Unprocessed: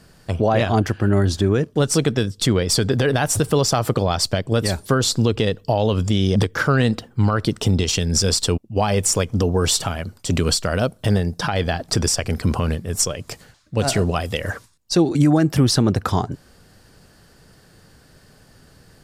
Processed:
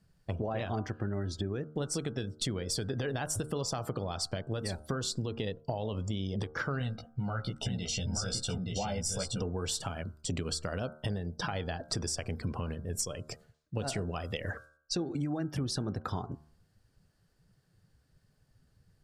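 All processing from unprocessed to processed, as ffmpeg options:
-filter_complex "[0:a]asettb=1/sr,asplit=3[s0][s1][s2];[s0]atrim=end=6.794[s3];[s1]atrim=start=6.79:end=9.42,asetpts=PTS-STARTPTS,afade=t=in:d=0.004:c=qsin,afade=t=out:st=2.626:d=0.004:c=qsin,flanger=delay=15:depth=2.2:speed=2.4,aecho=1:1:1.4:0.59,atrim=end_sample=115983,aecho=1:1:873:0.596,atrim=end_sample=115983[s4];[s2]atrim=start=9.416[s5];[s3][s4]acrossfade=d=0.004:c1=hsin:c2=qsin[s6];[s6][s5]acrossfade=d=0.004:c1=qsin:c2=hsin,afftdn=nr=16:nf=-36,acompressor=threshold=0.0708:ratio=6,bandreject=f=76.31:t=h:w=4,bandreject=f=152.62:t=h:w=4,bandreject=f=228.93:t=h:w=4,bandreject=f=305.24:t=h:w=4,bandreject=f=381.55:t=h:w=4,bandreject=f=457.86:t=h:w=4,bandreject=f=534.17:t=h:w=4,bandreject=f=610.48:t=h:w=4,bandreject=f=686.79:t=h:w=4,bandreject=f=763.1:t=h:w=4,bandreject=f=839.41:t=h:w=4,bandreject=f=915.72:t=h:w=4,bandreject=f=992.03:t=h:w=4,bandreject=f=1068.34:t=h:w=4,bandreject=f=1144.65:t=h:w=4,bandreject=f=1220.96:t=h:w=4,bandreject=f=1297.27:t=h:w=4,bandreject=f=1373.58:t=h:w=4,bandreject=f=1449.89:t=h:w=4,bandreject=f=1526.2:t=h:w=4,bandreject=f=1602.51:t=h:w=4,volume=0.422"

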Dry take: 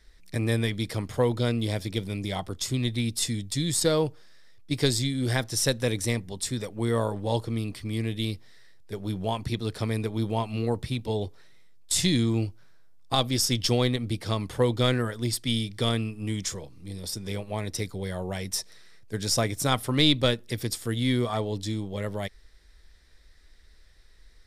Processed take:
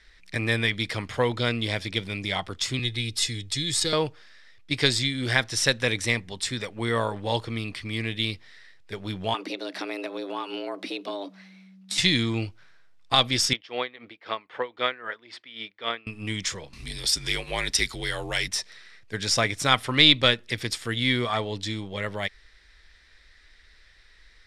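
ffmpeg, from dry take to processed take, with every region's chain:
-filter_complex "[0:a]asettb=1/sr,asplit=3[s0][s1][s2];[s0]atrim=end=2.794[s3];[s1]atrim=start=2.79:end=3.93,asetpts=PTS-STARTPTS,afade=t=in:d=0.004:c=qsin,afade=t=out:st=1.136:d=0.004:c=qsin,acrossover=split=300|3000[s4][s5][s6];[s5]acompressor=threshold=0.00447:ratio=2:attack=3.2:release=140:knee=2.83:detection=peak[s7];[s4][s7][s6]amix=inputs=3:normalize=0,aecho=1:1:2.4:0.53,atrim=end_sample=50274[s8];[s2]atrim=start=3.926[s9];[s3][s8]acrossfade=d=0.004:c1=hsin:c2=qsin[s10];[s10][s9]acrossfade=d=0.004:c1=qsin:c2=hsin,asettb=1/sr,asplit=3[s11][s12][s13];[s11]atrim=end=9.344[s14];[s12]atrim=start=9.34:end=11.98,asetpts=PTS-STARTPTS,afade=t=in:d=0.004:c=qsin,afade=t=out:st=2.636:d=0.004:c=qsin,equalizer=f=7500:w=2.4:g=-4,acompressor=threshold=0.0398:ratio=6:attack=3.2:release=140:knee=1:detection=peak,afreqshift=190[s15];[s13]atrim=start=11.976[s16];[s14][s15]acrossfade=d=0.004:c1=hsin:c2=qsin[s17];[s17][s16]acrossfade=d=0.004:c1=qsin:c2=hsin,asettb=1/sr,asplit=3[s18][s19][s20];[s18]atrim=end=13.534[s21];[s19]atrim=start=13.53:end=16.07,asetpts=PTS-STARTPTS,afade=t=in:d=0.004:c=qsin,afade=t=out:st=2.536:d=0.004:c=qsin,highpass=420,lowpass=2400,aeval=exprs='val(0)*pow(10,-18*(0.5-0.5*cos(2*PI*3.8*n/s))/20)':c=same[s22];[s20]atrim=start=16.066[s23];[s21][s22]acrossfade=d=0.004:c1=hsin:c2=qsin[s24];[s24][s23]acrossfade=d=0.004:c1=qsin:c2=hsin,asettb=1/sr,asplit=3[s25][s26][s27];[s25]atrim=end=16.734[s28];[s26]atrim=start=16.73:end=18.48,asetpts=PTS-STARTPTS,afade=t=in:d=0.004:c=qsin,afade=t=out:st=1.746:d=0.004:c=qsin,highshelf=f=2900:g=11.5,acompressor=mode=upward:threshold=0.0355:ratio=2.5:attack=3.2:release=140:knee=2.83:detection=peak,afreqshift=-57[s29];[s27]atrim=start=18.476[s30];[s28][s29]acrossfade=d=0.004:c1=hsin:c2=qsin[s31];[s31][s30]acrossfade=d=0.004:c1=qsin:c2=hsin,lowpass=9300,equalizer=f=2200:w=0.51:g=13,volume=0.708"

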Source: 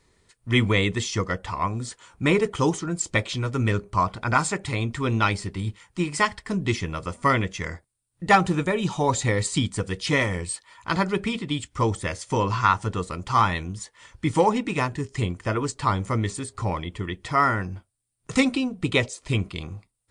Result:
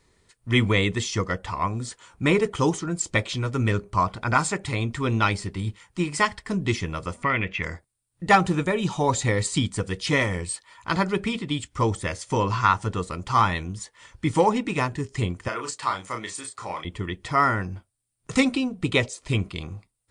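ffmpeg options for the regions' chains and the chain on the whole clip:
-filter_complex "[0:a]asettb=1/sr,asplit=3[s0][s1][s2];[s0]atrim=end=7.234[s3];[s1]atrim=start=7.23:end=7.63,asetpts=PTS-STARTPTS,afade=t=in:d=0.004:c=qsin,afade=t=out:st=0.396:d=0.004:c=qsin,lowpass=f=2500:t=q:w=3.7,acompressor=threshold=0.0708:ratio=2:attack=3.2:release=140:knee=1:detection=peak[s4];[s2]atrim=start=7.626[s5];[s3][s4]acrossfade=d=0.004:c1=hsin:c2=qsin[s6];[s6][s5]acrossfade=d=0.004:c1=qsin:c2=hsin,asettb=1/sr,asplit=3[s7][s8][s9];[s7]atrim=end=15.484[s10];[s8]atrim=start=15.48:end=16.85,asetpts=PTS-STARTPTS,afade=t=in:d=0.004:c=qsin,afade=t=out:st=1.366:d=0.004:c=qsin,highpass=f=1000:p=1,asplit=2[s11][s12];[s12]adelay=33,volume=0.562[s13];[s11][s13]amix=inputs=2:normalize=0,atrim=end_sample=60417[s14];[s9]atrim=start=16.846[s15];[s10][s14]acrossfade=d=0.004:c1=hsin:c2=qsin[s16];[s16][s15]acrossfade=d=0.004:c1=qsin:c2=hsin"

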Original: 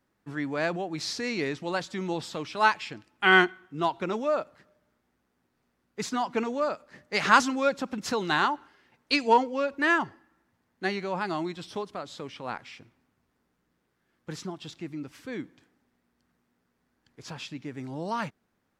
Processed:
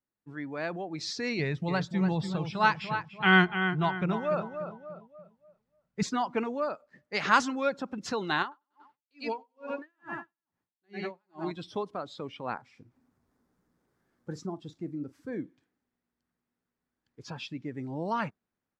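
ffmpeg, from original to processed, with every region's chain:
-filter_complex "[0:a]asettb=1/sr,asplit=3[s0][s1][s2];[s0]atrim=end=1.394[s3];[s1]atrim=start=1.39:end=6.03,asetpts=PTS-STARTPTS,afade=t=in:d=0.004:c=qsin,afade=t=out:st=4.636:d=0.004:c=qsin,lowshelf=f=220:t=q:w=3:g=6,asplit=2[s4][s5];[s5]adelay=291,lowpass=f=4700:p=1,volume=0.398,asplit=2[s6][s7];[s7]adelay=291,lowpass=f=4700:p=1,volume=0.42,asplit=2[s8][s9];[s9]adelay=291,lowpass=f=4700:p=1,volume=0.42,asplit=2[s10][s11];[s11]adelay=291,lowpass=f=4700:p=1,volume=0.42,asplit=2[s12][s13];[s13]adelay=291,lowpass=f=4700:p=1,volume=0.42[s14];[s4][s6][s8][s10][s12][s14]amix=inputs=6:normalize=0,atrim=end_sample=204624[s15];[s2]atrim=start=6.026[s16];[s3][s15]acrossfade=d=0.004:c1=hsin:c2=qsin[s17];[s17][s16]acrossfade=d=0.004:c1=qsin:c2=hsin,asettb=1/sr,asplit=3[s18][s19][s20];[s18]atrim=end=8.424[s21];[s19]atrim=start=8.42:end=11.51,asetpts=PTS-STARTPTS,afade=t=in:d=0.004:c=qsin,afade=t=out:st=3.086:d=0.004:c=qsin,aecho=1:1:94|188|282|376|470:0.473|0.218|0.1|0.0461|0.0212,atrim=end_sample=136269,acompressor=threshold=0.0447:ratio=5:attack=3.2:release=140:knee=1:detection=peak,aeval=exprs='val(0)*pow(10,-36*(0.5-0.5*cos(2*PI*2.3*n/s))/20)':c=same[s22];[s20]atrim=start=11.506[s23];[s21][s22]acrossfade=d=0.004:c1=hsin:c2=qsin[s24];[s24][s23]acrossfade=d=0.004:c1=qsin:c2=hsin,asettb=1/sr,asplit=3[s25][s26][s27];[s25]atrim=end=12.544[s28];[s26]atrim=start=12.54:end=15.42,asetpts=PTS-STARTPTS,afade=t=in:d=0.004:c=qsin,afade=t=out:st=2.876:d=0.004:c=qsin,equalizer=f=2800:t=o:w=1.3:g=-9,acompressor=mode=upward:threshold=0.00355:ratio=2.5:attack=3.2:release=140:knee=2.83:detection=peak,asplit=2[s29][s30];[s30]adelay=41,volume=0.211[s31];[s29][s31]amix=inputs=2:normalize=0,atrim=end_sample=127008[s32];[s27]atrim=start=15.416[s33];[s28][s32]acrossfade=d=0.004:c1=hsin:c2=qsin[s34];[s34][s33]acrossfade=d=0.004:c1=qsin:c2=hsin,afftdn=nr=13:nf=-44,highshelf=f=10000:g=-4,dynaudnorm=f=670:g=3:m=2.37,volume=0.447"

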